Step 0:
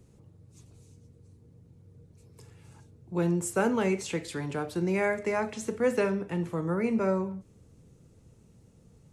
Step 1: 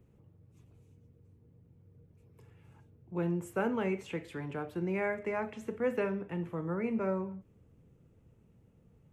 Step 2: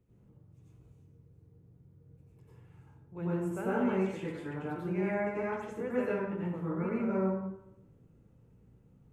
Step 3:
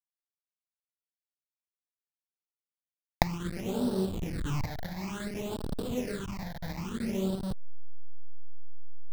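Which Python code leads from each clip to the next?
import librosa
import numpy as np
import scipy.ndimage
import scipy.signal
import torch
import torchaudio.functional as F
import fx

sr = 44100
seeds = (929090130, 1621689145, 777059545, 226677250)

y1 = fx.band_shelf(x, sr, hz=6400.0, db=-13.0, octaves=1.7)
y1 = F.gain(torch.from_numpy(y1), -5.5).numpy()
y2 = fx.rev_plate(y1, sr, seeds[0], rt60_s=0.82, hf_ratio=0.5, predelay_ms=80, drr_db=-8.0)
y2 = F.gain(torch.from_numpy(y2), -9.0).numpy()
y3 = fx.delta_hold(y2, sr, step_db=-31.0)
y3 = fx.recorder_agc(y3, sr, target_db=-27.0, rise_db_per_s=31.0, max_gain_db=30)
y3 = fx.phaser_stages(y3, sr, stages=8, low_hz=350.0, high_hz=2200.0, hz=0.57, feedback_pct=30)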